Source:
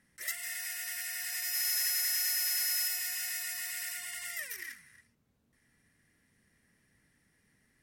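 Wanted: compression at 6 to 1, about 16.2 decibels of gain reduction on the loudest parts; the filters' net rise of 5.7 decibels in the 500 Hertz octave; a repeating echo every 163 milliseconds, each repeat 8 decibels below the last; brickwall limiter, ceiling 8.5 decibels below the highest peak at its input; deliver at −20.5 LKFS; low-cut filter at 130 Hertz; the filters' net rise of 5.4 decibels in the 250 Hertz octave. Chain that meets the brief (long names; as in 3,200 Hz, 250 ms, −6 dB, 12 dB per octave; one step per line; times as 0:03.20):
high-pass filter 130 Hz
parametric band 250 Hz +5 dB
parametric band 500 Hz +8 dB
downward compressor 6 to 1, threshold −46 dBFS
brickwall limiter −42 dBFS
repeating echo 163 ms, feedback 40%, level −8 dB
level +28 dB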